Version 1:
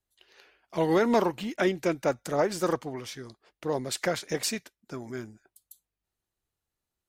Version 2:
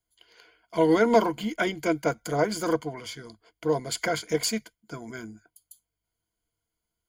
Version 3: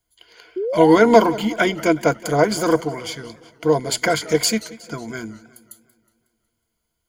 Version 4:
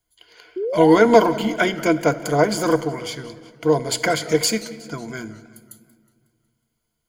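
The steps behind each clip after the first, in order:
ripple EQ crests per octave 1.8, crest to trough 13 dB
painted sound rise, 0.56–0.98, 350–1100 Hz -31 dBFS; warbling echo 0.183 s, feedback 54%, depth 158 cents, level -18.5 dB; gain +8 dB
shoebox room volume 1700 m³, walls mixed, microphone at 0.4 m; gain -1 dB

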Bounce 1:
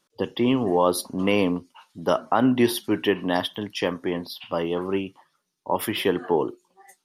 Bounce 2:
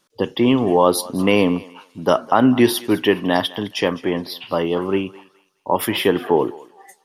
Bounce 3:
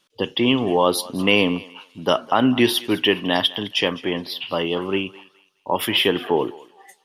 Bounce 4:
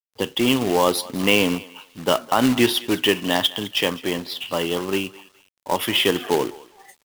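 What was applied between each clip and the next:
thinning echo 0.208 s, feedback 29%, high-pass 600 Hz, level -18 dB; gain +5.5 dB
bell 3000 Hz +10 dB 0.87 oct; gain -3.5 dB
companded quantiser 4-bit; gain -1 dB

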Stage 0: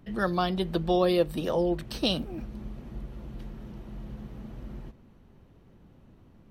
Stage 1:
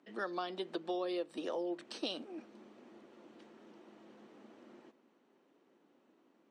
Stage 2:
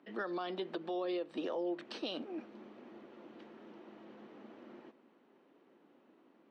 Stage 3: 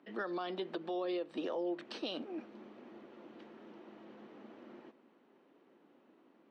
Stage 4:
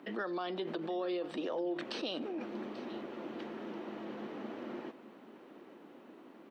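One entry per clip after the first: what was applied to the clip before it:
elliptic band-pass 290–8000 Hz, stop band 50 dB; compressor 4:1, threshold -28 dBFS, peak gain reduction 8 dB; gain -6.5 dB
LPF 3600 Hz 12 dB/oct; limiter -33.5 dBFS, peak gain reduction 8 dB; gain +4 dB
nothing audible
in parallel at +1.5 dB: negative-ratio compressor -50 dBFS, ratio -1; on the sum: echo 0.838 s -17 dB

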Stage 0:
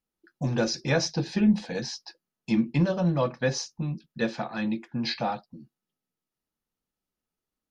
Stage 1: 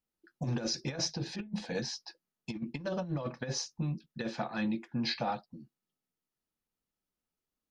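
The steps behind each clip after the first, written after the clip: negative-ratio compressor -27 dBFS, ratio -0.5; gain -6 dB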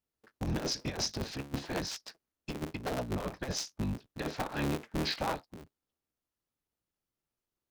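cycle switcher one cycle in 3, inverted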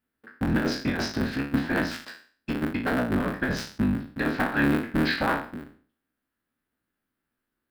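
spectral trails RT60 0.44 s; fifteen-band EQ 250 Hz +11 dB, 1600 Hz +12 dB, 6300 Hz -12 dB; gain +3 dB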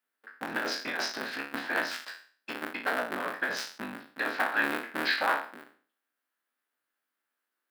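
HPF 630 Hz 12 dB/oct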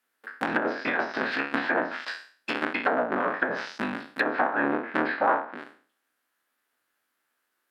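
treble ducked by the level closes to 960 Hz, closed at -27.5 dBFS; gain +8.5 dB

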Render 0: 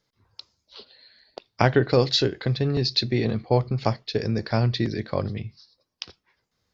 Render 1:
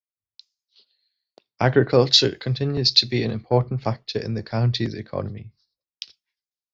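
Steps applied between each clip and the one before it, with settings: in parallel at -1 dB: limiter -11.5 dBFS, peak gain reduction 10 dB; on the sum: three-band expander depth 100%; gain -5.5 dB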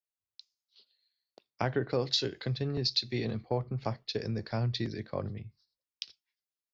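compressor 2.5:1, threshold -25 dBFS, peak gain reduction 10 dB; gain -5 dB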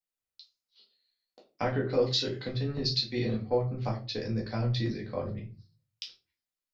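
shoebox room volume 150 m³, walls furnished, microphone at 2 m; gain -3.5 dB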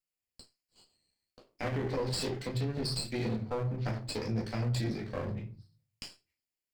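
minimum comb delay 0.4 ms; limiter -24.5 dBFS, peak gain reduction 9 dB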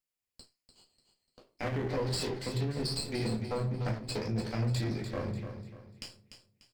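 feedback echo 0.295 s, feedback 35%, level -9.5 dB

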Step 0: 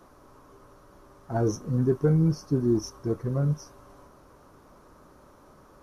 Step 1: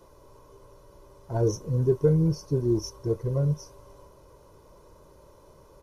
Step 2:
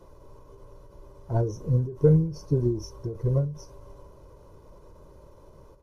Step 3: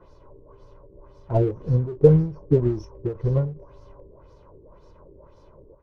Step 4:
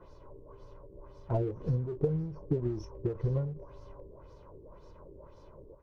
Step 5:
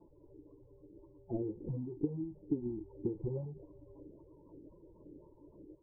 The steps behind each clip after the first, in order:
bell 1500 Hz -10 dB 0.82 oct; comb 2 ms, depth 63%
tilt -1.5 dB/oct; ending taper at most 110 dB/s
LFO low-pass sine 1.9 Hz 360–5200 Hz; in parallel at -5 dB: crossover distortion -34.5 dBFS; on the sum: gain -1 dB
compressor 12:1, threshold -24 dBFS, peak gain reduction 17 dB; gain -2 dB
bin magnitudes rounded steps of 30 dB; vocal tract filter u; vocal rider 0.5 s; gain +4 dB

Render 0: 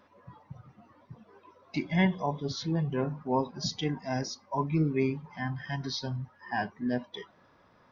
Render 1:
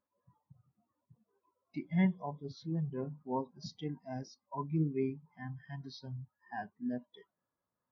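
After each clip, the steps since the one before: spectral expander 1.5:1; gain -6 dB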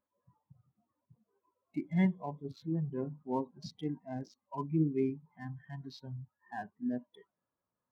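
Wiener smoothing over 9 samples; dynamic EQ 310 Hz, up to +5 dB, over -50 dBFS, Q 2.5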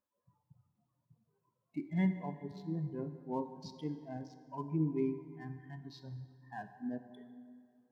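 plate-style reverb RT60 2.4 s, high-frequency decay 0.6×, DRR 9 dB; gain -3.5 dB

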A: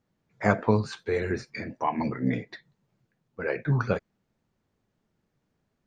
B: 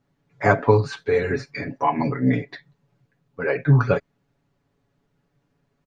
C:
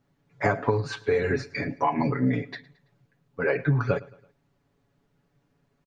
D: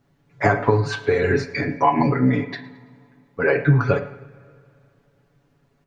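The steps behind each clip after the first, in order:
high shelf 6100 Hz -8.5 dB; comb 7.1 ms, depth 76%; gain +4.5 dB
compressor 12:1, threshold -19 dBFS, peak gain reduction 10 dB; feedback echo 0.11 s, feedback 46%, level -22 dB
reverb, pre-delay 3 ms, DRR 7.5 dB; gain +5.5 dB

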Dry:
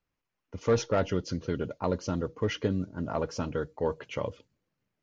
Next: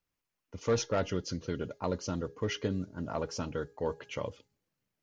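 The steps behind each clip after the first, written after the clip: high shelf 3900 Hz +8 dB; de-hum 412.4 Hz, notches 5; gain -4 dB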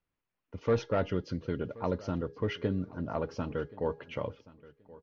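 air absorption 280 m; feedback echo 1.077 s, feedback 20%, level -20.5 dB; gain +2 dB

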